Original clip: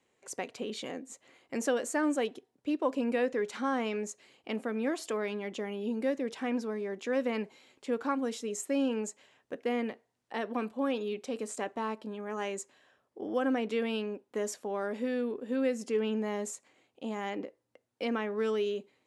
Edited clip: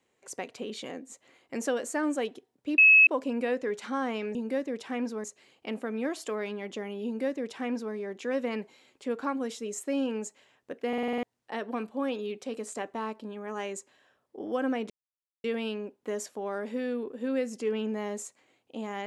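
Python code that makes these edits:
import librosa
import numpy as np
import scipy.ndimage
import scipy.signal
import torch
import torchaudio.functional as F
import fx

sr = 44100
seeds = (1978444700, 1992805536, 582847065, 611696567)

y = fx.edit(x, sr, fx.insert_tone(at_s=2.78, length_s=0.29, hz=2580.0, db=-13.5),
    fx.duplicate(start_s=5.87, length_s=0.89, to_s=4.06),
    fx.stutter_over(start_s=9.7, slice_s=0.05, count=7),
    fx.insert_silence(at_s=13.72, length_s=0.54), tone=tone)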